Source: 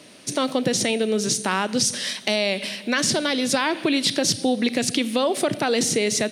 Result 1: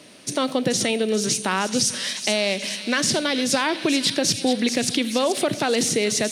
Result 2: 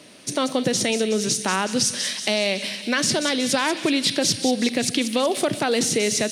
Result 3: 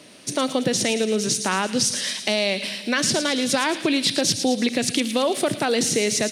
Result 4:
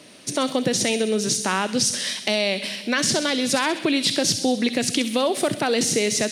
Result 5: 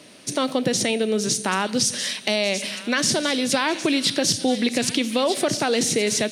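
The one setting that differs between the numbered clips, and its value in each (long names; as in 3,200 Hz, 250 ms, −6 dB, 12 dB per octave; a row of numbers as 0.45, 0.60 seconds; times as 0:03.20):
delay with a high-pass on its return, delay time: 432, 185, 111, 65, 1,246 milliseconds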